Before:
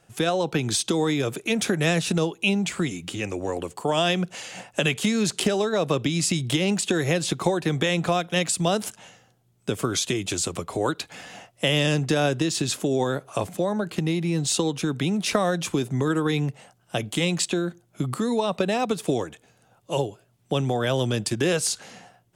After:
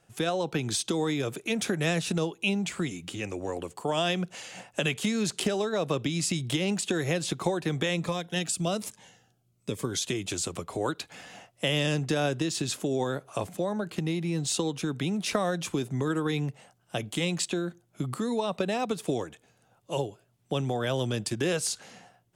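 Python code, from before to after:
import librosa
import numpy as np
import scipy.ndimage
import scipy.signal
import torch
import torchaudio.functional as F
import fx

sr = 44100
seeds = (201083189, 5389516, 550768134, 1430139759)

y = fx.notch_cascade(x, sr, direction='falling', hz=1.2, at=(7.96, 10.02))
y = F.gain(torch.from_numpy(y), -5.0).numpy()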